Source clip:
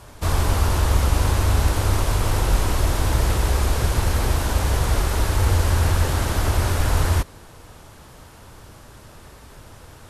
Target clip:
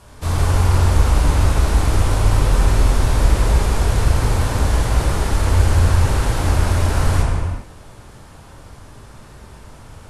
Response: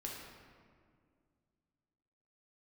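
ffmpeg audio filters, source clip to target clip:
-filter_complex "[1:a]atrim=start_sample=2205,afade=t=out:st=0.26:d=0.01,atrim=end_sample=11907,asetrate=22491,aresample=44100[a];[0:a][a]afir=irnorm=-1:irlink=0,volume=-1dB"

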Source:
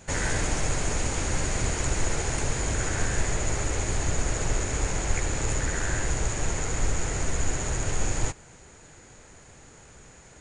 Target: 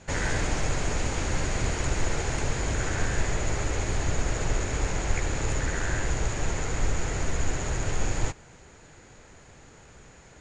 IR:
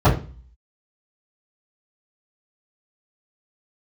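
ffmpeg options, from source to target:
-af "lowpass=5.9k"

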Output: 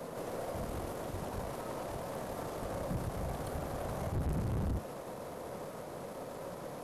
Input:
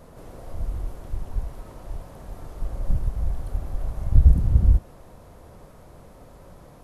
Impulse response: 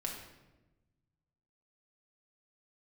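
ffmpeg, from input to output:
-filter_complex "[0:a]aeval=exprs='if(lt(val(0),0),0.708*val(0),val(0))':c=same,highpass=180,equalizer=f=510:t=o:w=0.78:g=3.5,acrossover=split=280|400[a][b][c];[b]acompressor=threshold=-60dB:ratio=6[d];[a][d][c]amix=inputs=3:normalize=0,aeval=exprs='(tanh(89.1*val(0)+0.25)-tanh(0.25))/89.1':c=same,volume=8dB"

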